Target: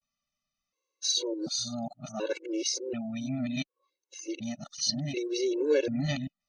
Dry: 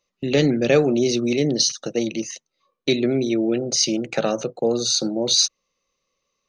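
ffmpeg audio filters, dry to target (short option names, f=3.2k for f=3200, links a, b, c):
-af "areverse,afftfilt=real='re*gt(sin(2*PI*0.68*pts/sr)*(1-2*mod(floor(b*sr/1024/290),2)),0)':imag='im*gt(sin(2*PI*0.68*pts/sr)*(1-2*mod(floor(b*sr/1024/290),2)),0)':win_size=1024:overlap=0.75,volume=-7.5dB"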